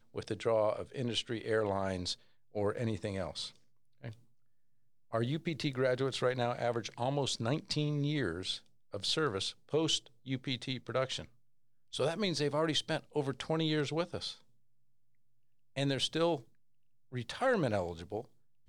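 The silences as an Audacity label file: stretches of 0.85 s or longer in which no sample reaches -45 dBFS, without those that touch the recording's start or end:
4.130000	5.130000	silence
14.340000	15.760000	silence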